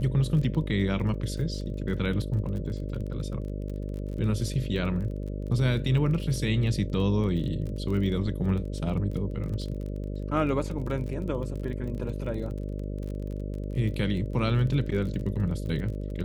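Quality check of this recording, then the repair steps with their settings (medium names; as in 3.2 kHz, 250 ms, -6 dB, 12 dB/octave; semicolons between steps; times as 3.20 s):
buzz 50 Hz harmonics 12 -33 dBFS
crackle 28 per s -35 dBFS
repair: de-click; de-hum 50 Hz, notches 12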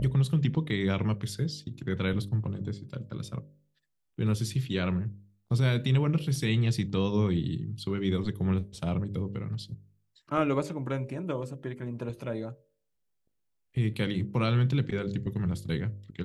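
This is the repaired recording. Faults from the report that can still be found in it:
nothing left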